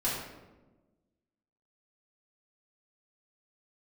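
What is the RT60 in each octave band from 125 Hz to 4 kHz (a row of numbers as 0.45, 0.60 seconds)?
1.5, 1.6, 1.4, 1.0, 0.80, 0.65 seconds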